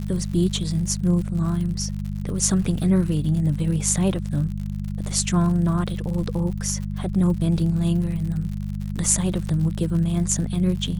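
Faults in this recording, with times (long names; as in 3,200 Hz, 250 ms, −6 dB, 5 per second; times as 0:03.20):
surface crackle 84 per second −31 dBFS
mains hum 50 Hz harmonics 4 −28 dBFS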